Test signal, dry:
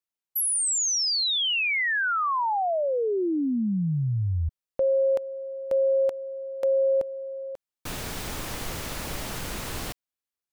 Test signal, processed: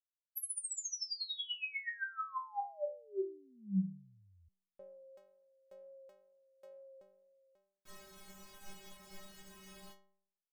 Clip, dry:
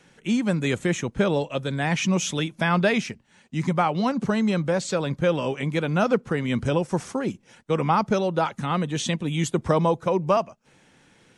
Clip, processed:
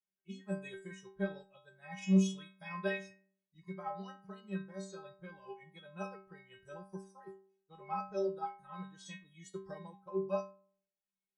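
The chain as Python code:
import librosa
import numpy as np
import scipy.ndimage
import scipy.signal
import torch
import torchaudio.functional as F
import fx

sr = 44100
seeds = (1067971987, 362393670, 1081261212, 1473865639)

y = fx.wow_flutter(x, sr, seeds[0], rate_hz=2.1, depth_cents=17.0)
y = fx.noise_reduce_blind(y, sr, reduce_db=18)
y = fx.stiff_resonator(y, sr, f0_hz=190.0, decay_s=0.66, stiffness=0.008)
y = fx.upward_expand(y, sr, threshold_db=-53.0, expansion=1.5)
y = F.gain(torch.from_numpy(y), 3.0).numpy()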